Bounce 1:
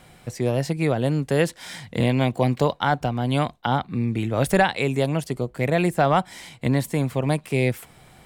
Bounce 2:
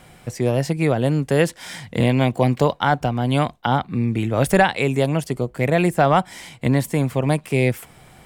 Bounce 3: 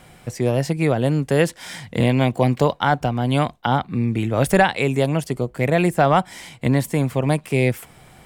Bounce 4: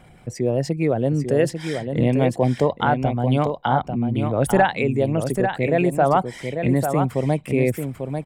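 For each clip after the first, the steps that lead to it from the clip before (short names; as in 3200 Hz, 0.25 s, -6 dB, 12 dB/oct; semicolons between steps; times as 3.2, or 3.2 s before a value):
bell 4000 Hz -3.5 dB 0.29 oct; gain +3 dB
nothing audible
formant sharpening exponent 1.5; echo 0.844 s -6.5 dB; gain -1.5 dB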